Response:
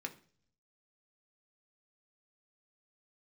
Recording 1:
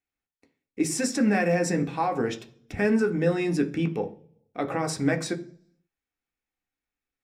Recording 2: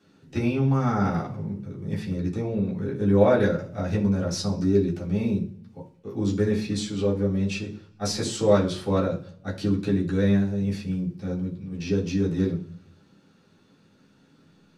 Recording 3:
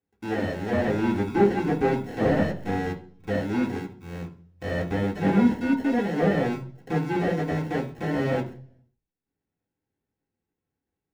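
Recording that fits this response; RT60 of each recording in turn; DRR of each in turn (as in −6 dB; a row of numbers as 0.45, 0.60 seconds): 1; 0.45, 0.45, 0.45 seconds; 3.5, −8.5, −2.0 decibels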